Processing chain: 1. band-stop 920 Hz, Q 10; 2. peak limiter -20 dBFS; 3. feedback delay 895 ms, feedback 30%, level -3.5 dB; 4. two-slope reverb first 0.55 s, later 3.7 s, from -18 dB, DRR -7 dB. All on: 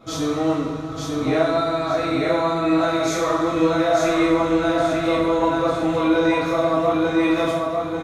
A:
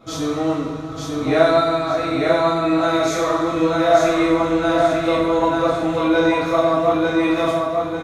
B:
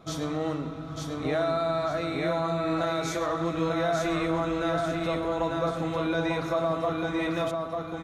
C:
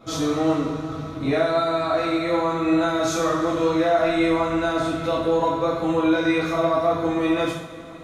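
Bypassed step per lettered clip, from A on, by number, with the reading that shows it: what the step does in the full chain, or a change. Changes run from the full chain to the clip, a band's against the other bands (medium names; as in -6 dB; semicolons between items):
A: 2, crest factor change +3.0 dB; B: 4, echo-to-direct 9.0 dB to -3.0 dB; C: 3, echo-to-direct 9.0 dB to 7.0 dB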